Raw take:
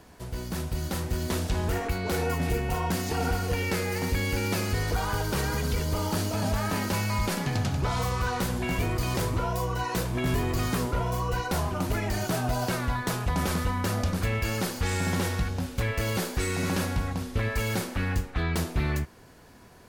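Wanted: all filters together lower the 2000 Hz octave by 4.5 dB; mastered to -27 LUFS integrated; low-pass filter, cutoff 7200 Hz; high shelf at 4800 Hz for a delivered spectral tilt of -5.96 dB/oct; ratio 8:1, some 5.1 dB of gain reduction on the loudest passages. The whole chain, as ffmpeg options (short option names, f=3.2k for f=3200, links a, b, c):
-af "lowpass=7.2k,equalizer=f=2k:t=o:g=-5,highshelf=f=4.8k:g=-5,acompressor=threshold=-28dB:ratio=8,volume=6.5dB"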